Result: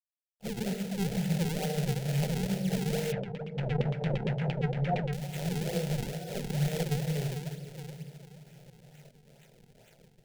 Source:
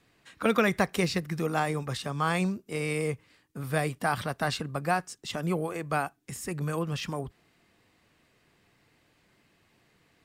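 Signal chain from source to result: harmonic-percussive separation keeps harmonic; level rider gain up to 15 dB; spectral noise reduction 21 dB; companded quantiser 4-bit; peak limiter -16.5 dBFS, peak gain reduction 10.5 dB; resonant high shelf 6.8 kHz +12 dB, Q 1.5; simulated room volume 140 m³, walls hard, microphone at 0.35 m; decimation with a swept rate 42×, swing 160% 2.2 Hz; static phaser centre 300 Hz, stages 6; 3.12–5.13 s: LFO low-pass saw down 8.7 Hz 460–3200 Hz; trim -8.5 dB

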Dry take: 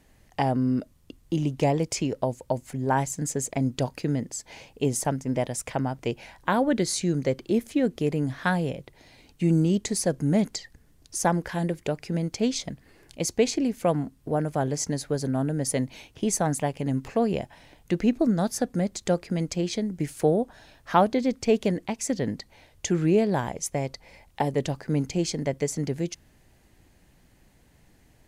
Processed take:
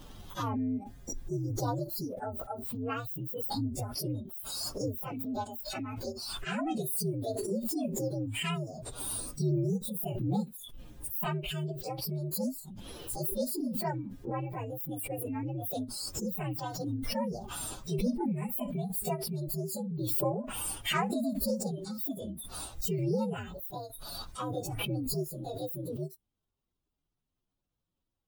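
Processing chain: frequency axis rescaled in octaves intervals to 130%; spectral noise reduction 18 dB; swell ahead of each attack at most 23 dB/s; trim -7 dB

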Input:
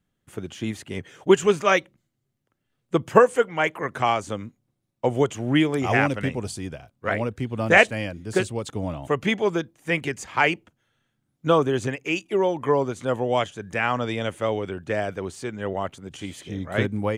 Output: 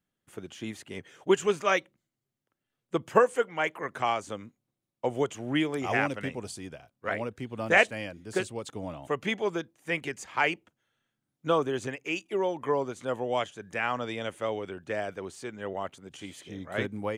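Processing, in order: bass shelf 150 Hz -10 dB; trim -5.5 dB

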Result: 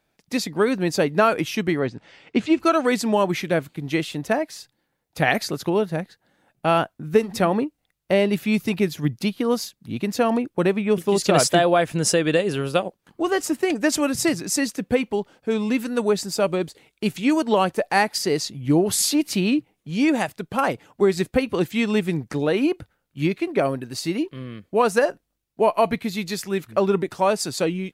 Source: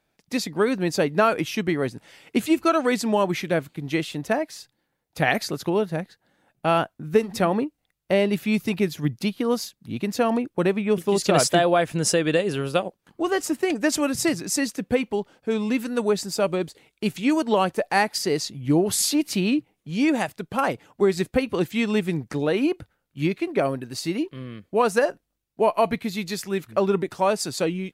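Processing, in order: 1.79–2.60 s: Bessel low-pass 4.4 kHz, order 4; trim +1.5 dB

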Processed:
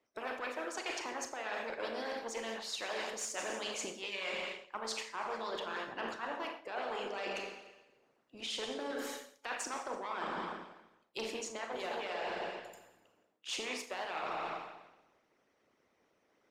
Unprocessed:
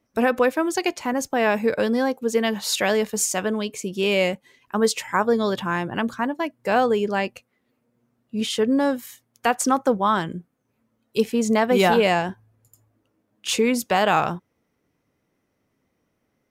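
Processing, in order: single-diode clipper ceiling -18 dBFS; three-band isolator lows -15 dB, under 310 Hz, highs -17 dB, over 7.3 kHz; Schroeder reverb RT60 1 s, combs from 28 ms, DRR 0.5 dB; harmonic-percussive split harmonic -16 dB; reverse; compression 12:1, threshold -40 dBFS, peak gain reduction 20 dB; reverse; trim +4 dB

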